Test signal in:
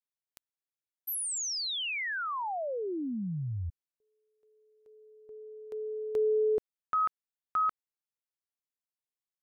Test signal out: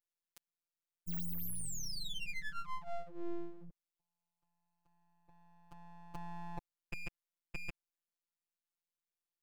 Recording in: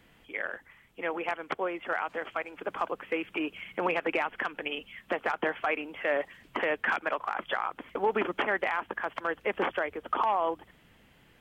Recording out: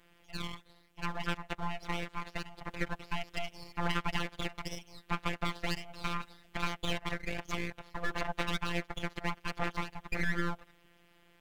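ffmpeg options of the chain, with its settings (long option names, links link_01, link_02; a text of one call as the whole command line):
ffmpeg -i in.wav -af "afftfilt=real='hypot(re,im)*cos(PI*b)':imag='0':win_size=1024:overlap=0.75,aeval=exprs='abs(val(0))':channel_layout=same" out.wav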